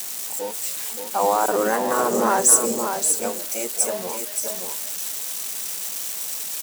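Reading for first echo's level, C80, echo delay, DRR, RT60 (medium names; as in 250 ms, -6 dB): -6.5 dB, no reverb, 575 ms, no reverb, no reverb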